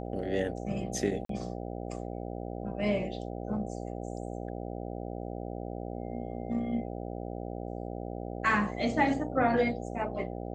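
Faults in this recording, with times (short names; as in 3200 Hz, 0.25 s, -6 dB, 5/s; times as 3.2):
buzz 60 Hz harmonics 13 -38 dBFS
1.25–1.29 gap 43 ms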